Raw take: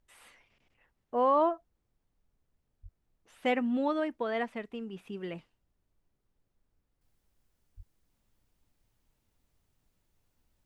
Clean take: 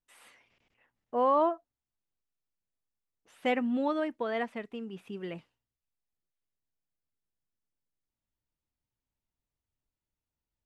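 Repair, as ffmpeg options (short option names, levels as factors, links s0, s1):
-filter_complex "[0:a]asplit=3[s0][s1][s2];[s0]afade=t=out:st=2.82:d=0.02[s3];[s1]highpass=f=140:w=0.5412,highpass=f=140:w=1.3066,afade=t=in:st=2.82:d=0.02,afade=t=out:st=2.94:d=0.02[s4];[s2]afade=t=in:st=2.94:d=0.02[s5];[s3][s4][s5]amix=inputs=3:normalize=0,asplit=3[s6][s7][s8];[s6]afade=t=out:st=7.76:d=0.02[s9];[s7]highpass=f=140:w=0.5412,highpass=f=140:w=1.3066,afade=t=in:st=7.76:d=0.02,afade=t=out:st=7.88:d=0.02[s10];[s8]afade=t=in:st=7.88:d=0.02[s11];[s9][s10][s11]amix=inputs=3:normalize=0,agate=range=0.0891:threshold=0.000316,asetnsamples=n=441:p=0,asendcmd='7.01 volume volume -12dB',volume=1"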